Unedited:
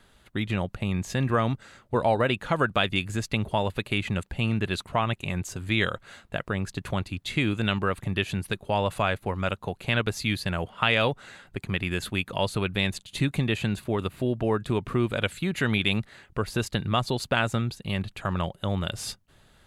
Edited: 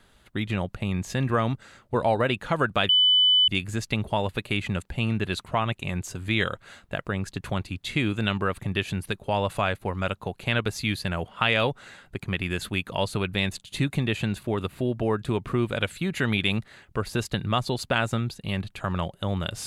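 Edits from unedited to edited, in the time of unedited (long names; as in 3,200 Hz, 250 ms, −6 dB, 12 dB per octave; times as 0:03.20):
0:02.89: insert tone 3,000 Hz −15.5 dBFS 0.59 s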